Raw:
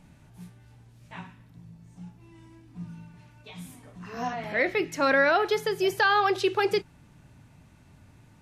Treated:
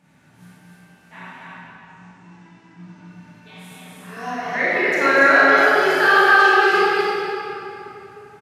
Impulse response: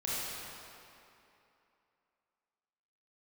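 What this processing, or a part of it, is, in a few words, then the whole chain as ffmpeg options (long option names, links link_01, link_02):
stadium PA: -filter_complex "[0:a]asettb=1/sr,asplit=3[link_01][link_02][link_03];[link_01]atrim=end=1.234[link_04];[link_02]atrim=start=1.23:end=3.06,asetpts=PTS-STARTPTS,afade=type=in:duration=0.004:curve=qsin,afade=type=out:start_time=1.826:duration=0.004:curve=qsin,lowpass=frequency=7300:width=0.5412,lowpass=frequency=7300:width=1.3066[link_05];[link_03]atrim=start=3.056[link_06];[link_04][link_05]acrossfade=duration=0.004:curve1=hsin:curve2=qsin[link_07];[link_07][link_06]acrossfade=duration=0.004:curve1=qsin:curve2=hsin,highpass=180,equalizer=frequency=1600:width_type=o:width=0.74:gain=7,aecho=1:1:244.9|285.7:0.562|0.501[link_08];[1:a]atrim=start_sample=2205[link_09];[link_08][link_09]afir=irnorm=-1:irlink=0,volume=-1dB"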